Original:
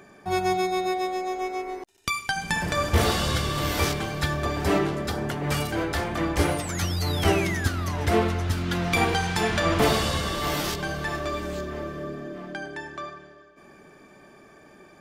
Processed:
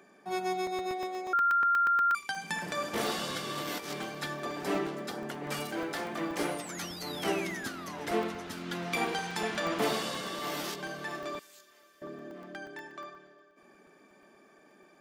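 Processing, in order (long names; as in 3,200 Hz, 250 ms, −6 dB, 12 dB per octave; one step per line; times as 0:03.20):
0:05.52–0:06.48: mu-law and A-law mismatch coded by mu
high-pass filter 180 Hz 24 dB per octave
0:01.33–0:02.15: beep over 1,390 Hz −14.5 dBFS
0:03.47–0:04.10: compressor whose output falls as the input rises −28 dBFS, ratio −0.5
0:11.39–0:12.02: first difference
regular buffer underruns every 0.12 s, samples 64, zero, from 0:00.67
level −8 dB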